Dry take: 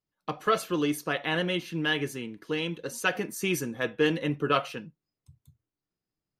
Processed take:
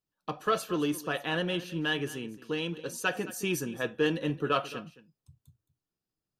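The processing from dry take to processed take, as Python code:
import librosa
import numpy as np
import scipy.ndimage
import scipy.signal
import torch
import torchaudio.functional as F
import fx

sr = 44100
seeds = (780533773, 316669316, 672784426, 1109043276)

p1 = fx.notch(x, sr, hz=2100.0, q=5.9)
p2 = 10.0 ** (-26.5 / 20.0) * np.tanh(p1 / 10.0 ** (-26.5 / 20.0))
p3 = p1 + (p2 * 10.0 ** (-12.0 / 20.0))
p4 = p3 + 10.0 ** (-17.0 / 20.0) * np.pad(p3, (int(218 * sr / 1000.0), 0))[:len(p3)]
y = p4 * 10.0 ** (-3.5 / 20.0)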